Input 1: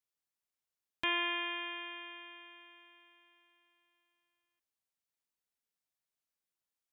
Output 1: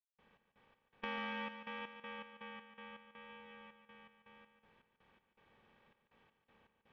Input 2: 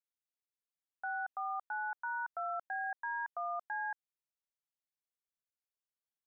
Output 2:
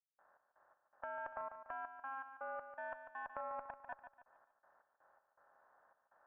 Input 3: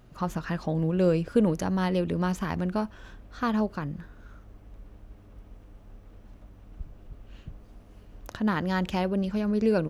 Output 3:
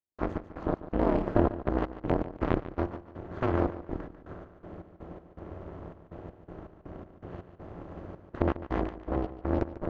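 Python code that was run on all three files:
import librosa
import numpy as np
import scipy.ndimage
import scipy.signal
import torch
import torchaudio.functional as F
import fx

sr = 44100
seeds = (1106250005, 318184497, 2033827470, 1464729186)

p1 = fx.bin_compress(x, sr, power=0.4)
p2 = fx.high_shelf(p1, sr, hz=2300.0, db=-8.5)
p3 = p2 * np.sin(2.0 * np.pi * 130.0 * np.arange(len(p2)) / sr)
p4 = 10.0 ** (-17.0 / 20.0) * np.tanh(p3 / 10.0 ** (-17.0 / 20.0))
p5 = p3 + F.gain(torch.from_numpy(p4), -6.5).numpy()
p6 = fx.cheby_harmonics(p5, sr, harmonics=(4,), levels_db=(-9,), full_scale_db=-4.0)
p7 = fx.vibrato(p6, sr, rate_hz=0.7, depth_cents=8.4)
p8 = fx.step_gate(p7, sr, bpm=81, pattern='.x.x.xxx.x.x', floor_db=-60.0, edge_ms=4.5)
p9 = fx.spacing_loss(p8, sr, db_at_10k=22)
p10 = fx.echo_feedback(p9, sr, ms=145, feedback_pct=41, wet_db=-9.5)
p11 = fx.upward_expand(p10, sr, threshold_db=-32.0, expansion=1.5)
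y = F.gain(torch.from_numpy(p11), -4.0).numpy()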